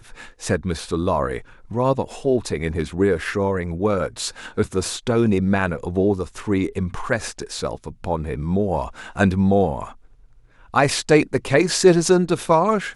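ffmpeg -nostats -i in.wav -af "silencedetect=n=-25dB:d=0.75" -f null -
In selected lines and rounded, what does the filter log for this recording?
silence_start: 9.84
silence_end: 10.74 | silence_duration: 0.90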